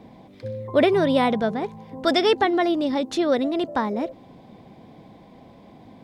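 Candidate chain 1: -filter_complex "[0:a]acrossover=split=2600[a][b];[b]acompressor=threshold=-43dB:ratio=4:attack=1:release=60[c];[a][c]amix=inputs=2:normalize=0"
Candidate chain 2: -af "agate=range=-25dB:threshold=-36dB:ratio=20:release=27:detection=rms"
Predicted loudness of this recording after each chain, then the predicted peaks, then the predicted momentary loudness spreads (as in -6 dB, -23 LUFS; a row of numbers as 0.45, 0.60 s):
-22.5, -22.0 LUFS; -7.0, -6.5 dBFS; 13, 14 LU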